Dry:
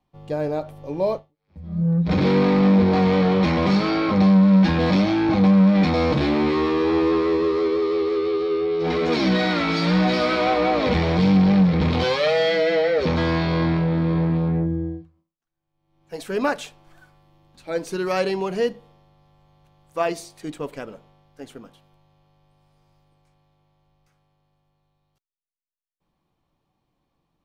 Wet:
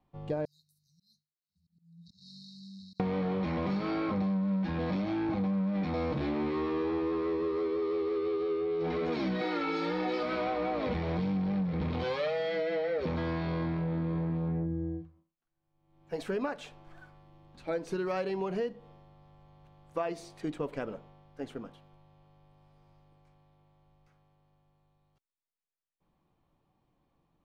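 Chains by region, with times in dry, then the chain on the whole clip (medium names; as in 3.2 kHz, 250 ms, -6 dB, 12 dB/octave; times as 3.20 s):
0.45–3.00 s: brick-wall FIR band-stop 220–3700 Hz + differentiator + slow attack 253 ms
9.41–10.23 s: resonant low shelf 170 Hz -11.5 dB, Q 1.5 + comb 2.3 ms, depth 89%
whole clip: low-pass 2.2 kHz 6 dB/octave; compression, threshold -30 dBFS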